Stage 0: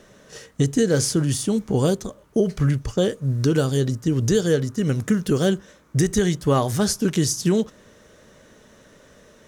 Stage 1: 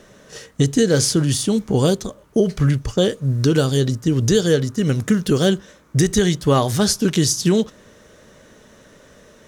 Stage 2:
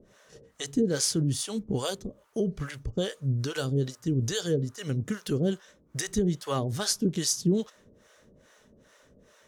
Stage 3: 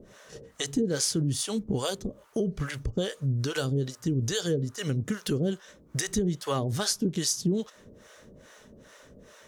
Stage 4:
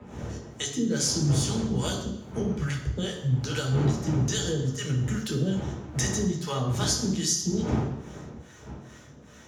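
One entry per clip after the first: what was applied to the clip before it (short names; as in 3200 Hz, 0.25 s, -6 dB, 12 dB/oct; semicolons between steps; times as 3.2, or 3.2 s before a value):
dynamic EQ 3800 Hz, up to +5 dB, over -45 dBFS, Q 1.4; gain +3 dB
harmonic tremolo 2.4 Hz, depth 100%, crossover 550 Hz; gain -6.5 dB
compressor 2:1, threshold -36 dBFS, peak gain reduction 9.5 dB; gain +6.5 dB
wind noise 380 Hz -36 dBFS; reverb RT60 0.75 s, pre-delay 3 ms, DRR 1 dB; gain -5 dB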